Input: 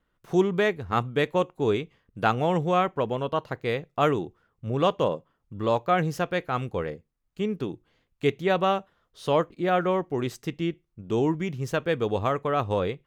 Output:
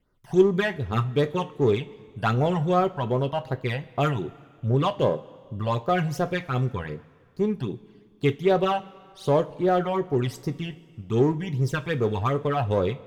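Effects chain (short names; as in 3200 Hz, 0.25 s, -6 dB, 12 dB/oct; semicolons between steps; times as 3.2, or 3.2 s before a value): phaser stages 12, 2.6 Hz, lowest notch 370–3100 Hz; in parallel at -6.5 dB: hard clip -26 dBFS, distortion -7 dB; on the sum: two-slope reverb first 0.21 s, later 2.1 s, from -19 dB, DRR 8.5 dB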